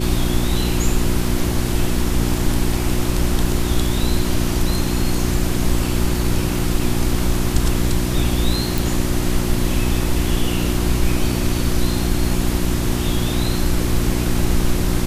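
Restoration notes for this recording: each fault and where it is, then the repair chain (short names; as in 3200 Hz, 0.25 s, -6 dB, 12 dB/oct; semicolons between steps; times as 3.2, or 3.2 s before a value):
hum 60 Hz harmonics 6 -22 dBFS
8.78 pop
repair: de-click; de-hum 60 Hz, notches 6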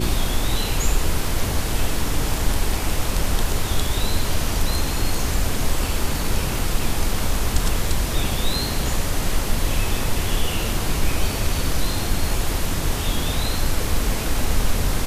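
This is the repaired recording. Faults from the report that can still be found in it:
none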